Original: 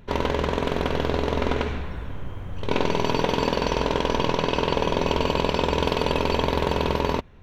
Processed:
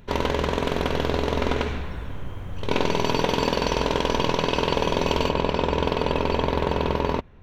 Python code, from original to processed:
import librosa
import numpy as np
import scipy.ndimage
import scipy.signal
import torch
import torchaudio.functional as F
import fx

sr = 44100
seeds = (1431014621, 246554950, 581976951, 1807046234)

y = fx.high_shelf(x, sr, hz=4000.0, db=fx.steps((0.0, 4.5), (5.28, -8.0)))